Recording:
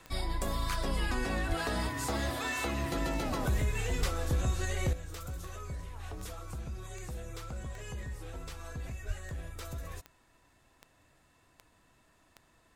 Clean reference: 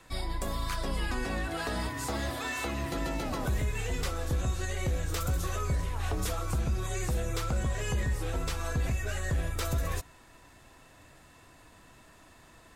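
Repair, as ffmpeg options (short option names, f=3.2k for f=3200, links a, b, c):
-filter_complex "[0:a]adeclick=t=4,asplit=3[a][b][c];[a]afade=t=out:st=1.48:d=0.02[d];[b]highpass=f=140:w=0.5412,highpass=f=140:w=1.3066,afade=t=in:st=1.48:d=0.02,afade=t=out:st=1.6:d=0.02[e];[c]afade=t=in:st=1.6:d=0.02[f];[d][e][f]amix=inputs=3:normalize=0,asplit=3[g][h][i];[g]afade=t=out:st=3.99:d=0.02[j];[h]highpass=f=140:w=0.5412,highpass=f=140:w=1.3066,afade=t=in:st=3.99:d=0.02,afade=t=out:st=4.11:d=0.02[k];[i]afade=t=in:st=4.11:d=0.02[l];[j][k][l]amix=inputs=3:normalize=0,asplit=3[m][n][o];[m]afade=t=out:st=9.07:d=0.02[p];[n]highpass=f=140:w=0.5412,highpass=f=140:w=1.3066,afade=t=in:st=9.07:d=0.02,afade=t=out:st=9.19:d=0.02[q];[o]afade=t=in:st=9.19:d=0.02[r];[p][q][r]amix=inputs=3:normalize=0,asetnsamples=n=441:p=0,asendcmd='4.93 volume volume 10.5dB',volume=0dB"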